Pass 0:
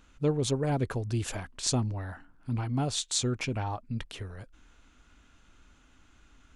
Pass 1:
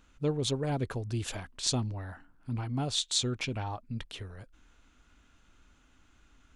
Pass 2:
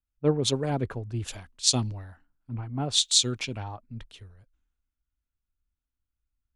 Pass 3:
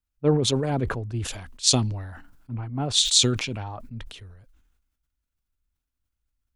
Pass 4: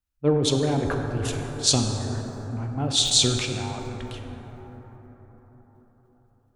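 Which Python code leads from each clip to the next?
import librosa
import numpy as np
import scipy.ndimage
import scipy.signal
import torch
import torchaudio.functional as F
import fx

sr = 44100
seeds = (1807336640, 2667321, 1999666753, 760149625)

y1 = fx.dynamic_eq(x, sr, hz=3600.0, q=1.7, threshold_db=-50.0, ratio=4.0, max_db=7)
y1 = F.gain(torch.from_numpy(y1), -3.0).numpy()
y2 = fx.band_widen(y1, sr, depth_pct=100)
y3 = fx.sustainer(y2, sr, db_per_s=53.0)
y3 = F.gain(torch.from_numpy(y3), 2.0).numpy()
y4 = fx.rev_plate(y3, sr, seeds[0], rt60_s=5.0, hf_ratio=0.3, predelay_ms=0, drr_db=2.5)
y4 = F.gain(torch.from_numpy(y4), -1.0).numpy()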